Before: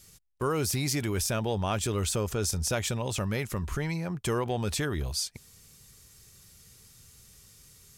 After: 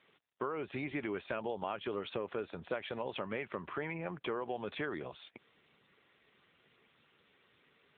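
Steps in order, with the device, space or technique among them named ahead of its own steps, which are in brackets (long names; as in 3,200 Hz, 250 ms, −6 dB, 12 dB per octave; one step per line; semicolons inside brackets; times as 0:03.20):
voicemail (band-pass filter 340–3,000 Hz; downward compressor 8 to 1, threshold −34 dBFS, peak gain reduction 9.5 dB; level +1.5 dB; AMR narrowband 7.95 kbit/s 8,000 Hz)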